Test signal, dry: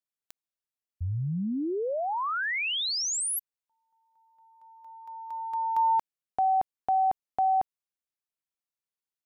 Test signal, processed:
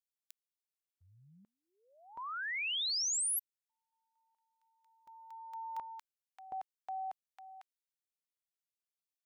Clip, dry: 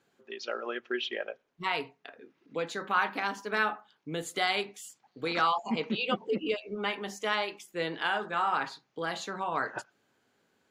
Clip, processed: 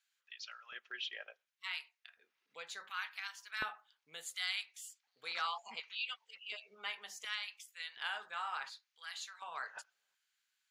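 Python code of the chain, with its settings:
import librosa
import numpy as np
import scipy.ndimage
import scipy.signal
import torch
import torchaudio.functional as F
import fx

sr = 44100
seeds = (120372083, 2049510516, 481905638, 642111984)

y = fx.tone_stack(x, sr, knobs='10-0-10')
y = fx.filter_lfo_highpass(y, sr, shape='square', hz=0.69, low_hz=310.0, high_hz=1600.0, q=0.77)
y = F.gain(torch.from_numpy(y), -3.5).numpy()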